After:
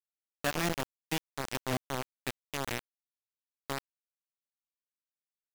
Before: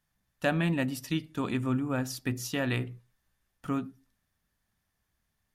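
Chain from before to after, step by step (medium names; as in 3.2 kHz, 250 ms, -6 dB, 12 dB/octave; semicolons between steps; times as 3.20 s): bit crusher 4-bit; trim -5 dB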